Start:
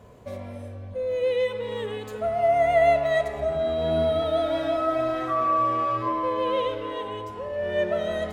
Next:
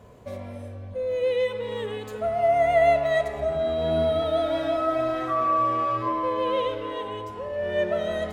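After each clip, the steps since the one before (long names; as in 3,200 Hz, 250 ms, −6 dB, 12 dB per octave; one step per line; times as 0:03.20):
no processing that can be heard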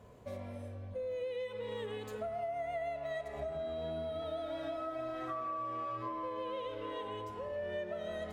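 downward compressor 10 to 1, threshold −29 dBFS, peak gain reduction 14 dB
level −7 dB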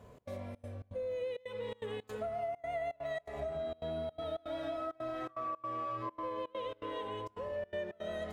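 gate pattern "xx.xxx.xx.xxx" 165 BPM −24 dB
level +1 dB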